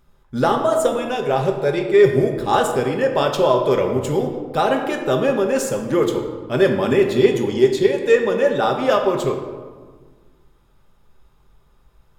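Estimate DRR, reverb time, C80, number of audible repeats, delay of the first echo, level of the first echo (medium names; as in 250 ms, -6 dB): 2.5 dB, 1.6 s, 8.0 dB, no echo, no echo, no echo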